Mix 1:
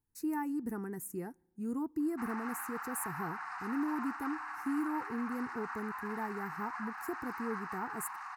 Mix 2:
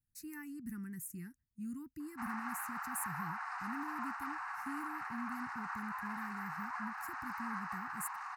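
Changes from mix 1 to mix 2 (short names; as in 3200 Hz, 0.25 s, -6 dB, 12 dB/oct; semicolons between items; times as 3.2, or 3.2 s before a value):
speech: add Chebyshev band-stop 180–2000 Hz, order 2; reverb: off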